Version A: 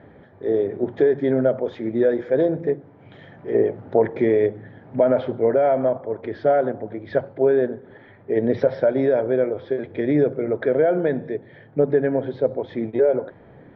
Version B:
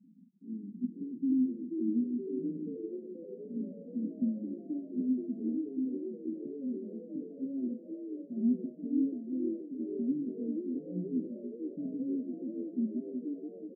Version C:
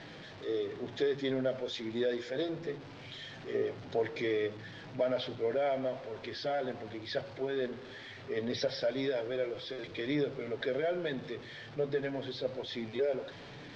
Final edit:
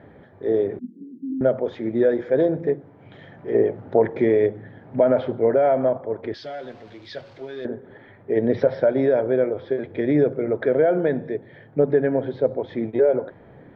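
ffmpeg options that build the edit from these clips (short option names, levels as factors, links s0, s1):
-filter_complex "[0:a]asplit=3[s0][s1][s2];[s0]atrim=end=0.792[s3];[1:a]atrim=start=0.788:end=1.412[s4];[s1]atrim=start=1.408:end=6.342[s5];[2:a]atrim=start=6.338:end=7.652[s6];[s2]atrim=start=7.648[s7];[s3][s4]acrossfade=d=0.004:c1=hsin:c2=hsin[s8];[s8][s5]acrossfade=d=0.004:c1=hsin:c2=hsin[s9];[s9][s6]acrossfade=d=0.004:c1=hsin:c2=hsin[s10];[s10][s7]acrossfade=d=0.004:c1=hsin:c2=hsin"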